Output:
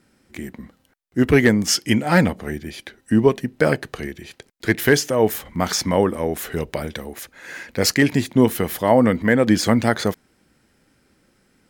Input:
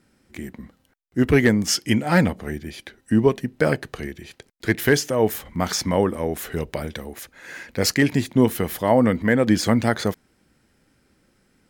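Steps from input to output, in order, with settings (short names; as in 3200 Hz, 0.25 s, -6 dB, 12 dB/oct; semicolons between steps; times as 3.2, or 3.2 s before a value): low shelf 130 Hz -3.5 dB; gain +2.5 dB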